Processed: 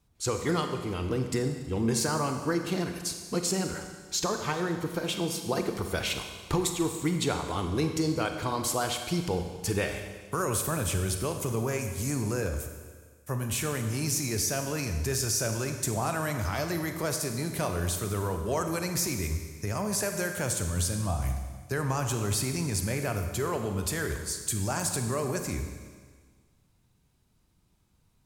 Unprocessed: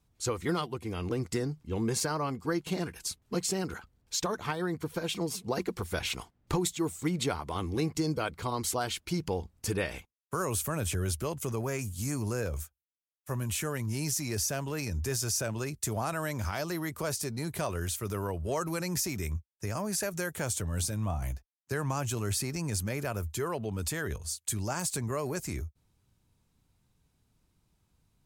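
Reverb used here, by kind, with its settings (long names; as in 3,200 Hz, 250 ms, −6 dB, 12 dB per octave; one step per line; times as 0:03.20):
four-comb reverb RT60 1.6 s, combs from 31 ms, DRR 5.5 dB
level +2 dB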